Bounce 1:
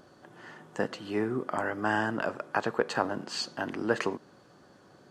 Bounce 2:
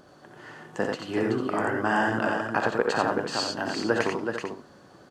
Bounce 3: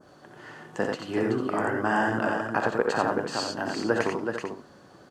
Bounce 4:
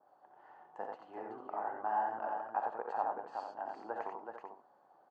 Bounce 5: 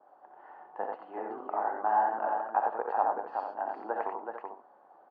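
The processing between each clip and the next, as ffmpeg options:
ffmpeg -i in.wav -af "aecho=1:1:61|88|377|448:0.376|0.668|0.531|0.266,volume=2dB" out.wav
ffmpeg -i in.wav -af "adynamicequalizer=threshold=0.00631:dfrequency=3500:dqfactor=0.86:tfrequency=3500:tqfactor=0.86:attack=5:release=100:ratio=0.375:range=2:mode=cutabove:tftype=bell" out.wav
ffmpeg -i in.wav -af "bandpass=frequency=810:width_type=q:width=5:csg=0,volume=-3dB" out.wav
ffmpeg -i in.wav -af "highpass=230,lowpass=2300,volume=7.5dB" out.wav

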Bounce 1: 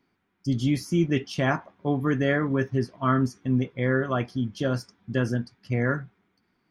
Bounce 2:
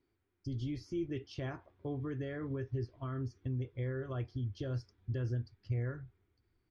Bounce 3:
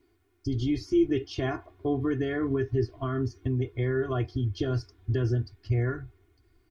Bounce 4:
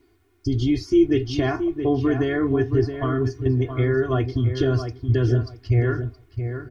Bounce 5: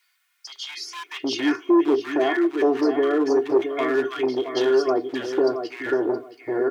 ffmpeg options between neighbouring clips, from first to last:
ffmpeg -i in.wav -af "asubboost=boost=2.5:cutoff=150,alimiter=limit=-21.5dB:level=0:latency=1:release=261,firequalizer=gain_entry='entry(100,0);entry(180,-19);entry(340,-3);entry(570,-10);entry(850,-14);entry(4600,-10);entry(10000,-30)':delay=0.05:min_phase=1" out.wav
ffmpeg -i in.wav -af "aecho=1:1:2.8:0.87,volume=9dB" out.wav
ffmpeg -i in.wav -filter_complex "[0:a]asplit=2[link_01][link_02];[link_02]adelay=672,lowpass=frequency=2200:poles=1,volume=-8dB,asplit=2[link_03][link_04];[link_04]adelay=672,lowpass=frequency=2200:poles=1,volume=0.2,asplit=2[link_05][link_06];[link_06]adelay=672,lowpass=frequency=2200:poles=1,volume=0.2[link_07];[link_01][link_03][link_05][link_07]amix=inputs=4:normalize=0,volume=6.5dB" out.wav
ffmpeg -i in.wav -filter_complex "[0:a]asoftclip=type=hard:threshold=-16dB,highpass=frequency=330:width=0.5412,highpass=frequency=330:width=1.3066,acrossover=split=1300[link_01][link_02];[link_01]adelay=770[link_03];[link_03][link_02]amix=inputs=2:normalize=0,volume=5.5dB" out.wav

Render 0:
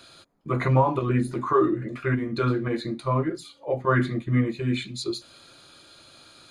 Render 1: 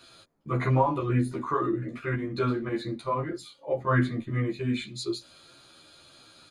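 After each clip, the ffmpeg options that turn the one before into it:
ffmpeg -i in.wav -filter_complex "[0:a]asplit=2[link_01][link_02];[link_02]adelay=11.7,afreqshift=-1.8[link_03];[link_01][link_03]amix=inputs=2:normalize=1" out.wav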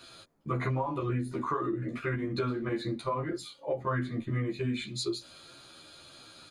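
ffmpeg -i in.wav -af "acompressor=threshold=-30dB:ratio=6,volume=2dB" out.wav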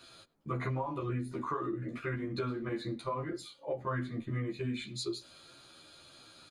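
ffmpeg -i in.wav -filter_complex "[0:a]asplit=2[link_01][link_02];[link_02]adelay=100,highpass=300,lowpass=3400,asoftclip=type=hard:threshold=-27dB,volume=-23dB[link_03];[link_01][link_03]amix=inputs=2:normalize=0,volume=-4dB" out.wav

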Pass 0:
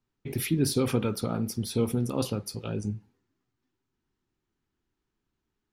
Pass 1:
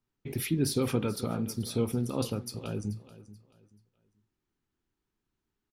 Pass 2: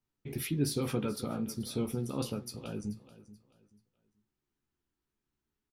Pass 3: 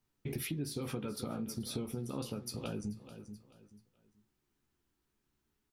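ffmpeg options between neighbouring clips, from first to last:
ffmpeg -i in.wav -af "aecho=1:1:433|866|1299:0.141|0.041|0.0119,volume=-2.5dB" out.wav
ffmpeg -i in.wav -filter_complex "[0:a]asplit=2[link_01][link_02];[link_02]adelay=14,volume=-6.5dB[link_03];[link_01][link_03]amix=inputs=2:normalize=0,volume=-4dB" out.wav
ffmpeg -i in.wav -af "acompressor=threshold=-41dB:ratio=6,volume=5.5dB" out.wav

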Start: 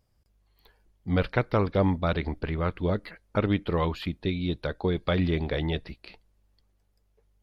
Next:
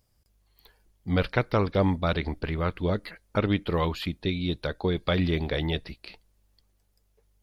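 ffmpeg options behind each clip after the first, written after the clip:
ffmpeg -i in.wav -af "highshelf=frequency=4000:gain=8.5" out.wav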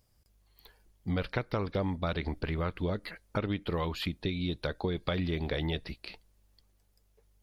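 ffmpeg -i in.wav -af "acompressor=threshold=-29dB:ratio=4" out.wav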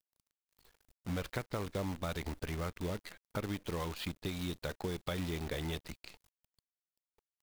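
ffmpeg -i in.wav -af "acrusher=bits=7:dc=4:mix=0:aa=0.000001,volume=-6dB" out.wav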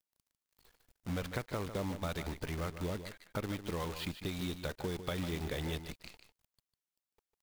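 ffmpeg -i in.wav -af "aecho=1:1:150:0.299" out.wav

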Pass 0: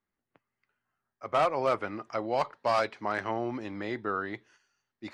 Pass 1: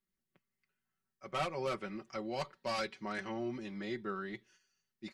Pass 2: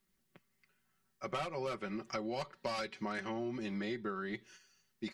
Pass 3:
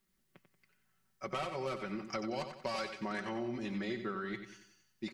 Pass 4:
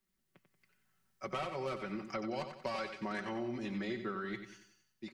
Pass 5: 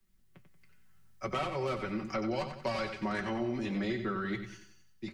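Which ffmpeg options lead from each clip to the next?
ffmpeg -i in.wav -af "equalizer=frequency=840:width=0.52:gain=-12.5,aecho=1:1:5.3:0.81,volume=-2dB" out.wav
ffmpeg -i in.wav -af "acompressor=threshold=-46dB:ratio=6,volume=10dB" out.wav
ffmpeg -i in.wav -af "aecho=1:1:92|184|276|368|460:0.355|0.145|0.0596|0.0245|0.01" out.wav
ffmpeg -i in.wav -filter_complex "[0:a]acrossover=split=160|3800[link_01][link_02][link_03];[link_03]alimiter=level_in=22.5dB:limit=-24dB:level=0:latency=1:release=419,volume=-22.5dB[link_04];[link_01][link_02][link_04]amix=inputs=3:normalize=0,dynaudnorm=framelen=110:gausssize=9:maxgain=4.5dB,volume=-5dB" out.wav
ffmpeg -i in.wav -filter_complex "[0:a]flanger=delay=8.4:depth=4.8:regen=-55:speed=0.73:shape=sinusoidal,acrossover=split=120|470|2000[link_01][link_02][link_03][link_04];[link_01]aeval=exprs='0.00266*sin(PI/2*3.55*val(0)/0.00266)':channel_layout=same[link_05];[link_05][link_02][link_03][link_04]amix=inputs=4:normalize=0,volume=8.5dB" out.wav

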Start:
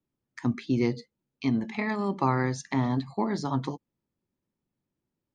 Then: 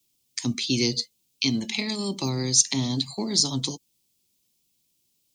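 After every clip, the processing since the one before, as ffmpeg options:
ffmpeg -i in.wav -filter_complex "[0:a]acrossover=split=310|540|4000[link_01][link_02][link_03][link_04];[link_03]acompressor=threshold=-44dB:ratio=4[link_05];[link_01][link_02][link_05][link_04]amix=inputs=4:normalize=0,aexciter=amount=13.9:drive=3.6:freq=2500" out.wav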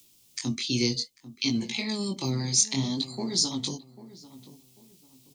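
ffmpeg -i in.wav -filter_complex "[0:a]acompressor=mode=upward:threshold=-43dB:ratio=2.5,flanger=delay=17:depth=7.7:speed=0.6,asplit=2[link_01][link_02];[link_02]adelay=793,lowpass=frequency=1400:poles=1,volume=-15.5dB,asplit=2[link_03][link_04];[link_04]adelay=793,lowpass=frequency=1400:poles=1,volume=0.32,asplit=2[link_05][link_06];[link_06]adelay=793,lowpass=frequency=1400:poles=1,volume=0.32[link_07];[link_01][link_03][link_05][link_07]amix=inputs=4:normalize=0" out.wav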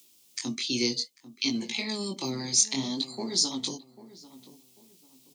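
ffmpeg -i in.wav -af "highpass=230" out.wav

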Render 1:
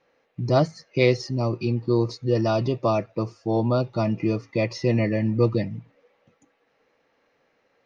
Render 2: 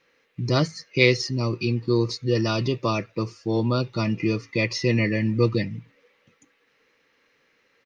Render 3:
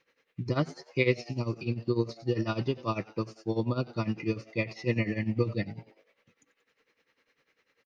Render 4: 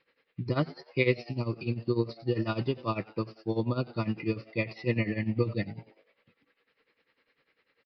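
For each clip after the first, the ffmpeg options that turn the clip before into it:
ffmpeg -i in.wav -af "firequalizer=gain_entry='entry(460,0);entry(700,-10);entry(1000,0);entry(2000,7)':delay=0.05:min_phase=1" out.wav
ffmpeg -i in.wav -filter_complex "[0:a]asplit=5[link_01][link_02][link_03][link_04][link_05];[link_02]adelay=91,afreqshift=110,volume=-21dB[link_06];[link_03]adelay=182,afreqshift=220,volume=-26dB[link_07];[link_04]adelay=273,afreqshift=330,volume=-31.1dB[link_08];[link_05]adelay=364,afreqshift=440,volume=-36.1dB[link_09];[link_01][link_06][link_07][link_08][link_09]amix=inputs=5:normalize=0,acrossover=split=3100[link_10][link_11];[link_11]acompressor=threshold=-43dB:ratio=4:attack=1:release=60[link_12];[link_10][link_12]amix=inputs=2:normalize=0,tremolo=f=10:d=0.82,volume=-3.5dB" out.wav
ffmpeg -i in.wav -af "aresample=11025,aresample=44100" out.wav

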